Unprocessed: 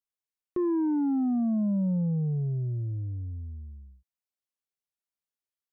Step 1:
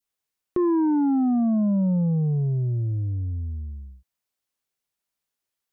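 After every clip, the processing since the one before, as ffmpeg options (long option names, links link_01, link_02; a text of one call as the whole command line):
ffmpeg -i in.wav -filter_complex "[0:a]asplit=2[link_01][link_02];[link_02]acompressor=threshold=-35dB:ratio=6,volume=2dB[link_03];[link_01][link_03]amix=inputs=2:normalize=0,adynamicequalizer=threshold=0.00794:dfrequency=1000:dqfactor=0.98:tfrequency=1000:tqfactor=0.98:attack=5:release=100:ratio=0.375:range=2.5:mode=boostabove:tftype=bell,volume=1.5dB" out.wav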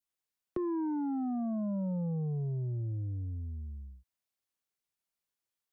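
ffmpeg -i in.wav -filter_complex "[0:a]acrossover=split=120|360[link_01][link_02][link_03];[link_01]acompressor=threshold=-34dB:ratio=4[link_04];[link_02]acompressor=threshold=-32dB:ratio=4[link_05];[link_03]acompressor=threshold=-33dB:ratio=4[link_06];[link_04][link_05][link_06]amix=inputs=3:normalize=0,volume=-6dB" out.wav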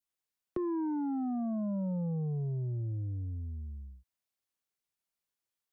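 ffmpeg -i in.wav -af anull out.wav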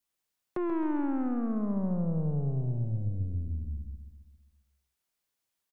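ffmpeg -i in.wav -af "aeval=exprs='(tanh(50.1*val(0)+0.4)-tanh(0.4))/50.1':channel_layout=same,aecho=1:1:134|268|402|536|670|804|938:0.355|0.199|0.111|0.0623|0.0349|0.0195|0.0109,volume=6.5dB" out.wav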